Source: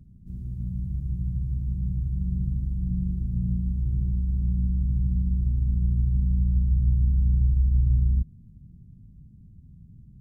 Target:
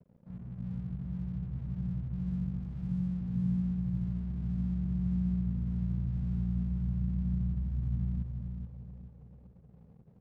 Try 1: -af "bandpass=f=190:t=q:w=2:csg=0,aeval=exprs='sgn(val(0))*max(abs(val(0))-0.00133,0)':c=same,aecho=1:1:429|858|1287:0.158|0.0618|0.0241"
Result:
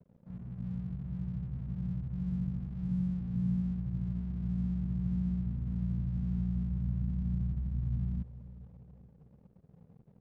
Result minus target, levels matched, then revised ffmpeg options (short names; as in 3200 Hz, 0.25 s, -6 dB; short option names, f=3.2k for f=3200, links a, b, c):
echo-to-direct -10 dB
-af "bandpass=f=190:t=q:w=2:csg=0,aeval=exprs='sgn(val(0))*max(abs(val(0))-0.00133,0)':c=same,aecho=1:1:429|858|1287|1716|2145:0.501|0.195|0.0762|0.0297|0.0116"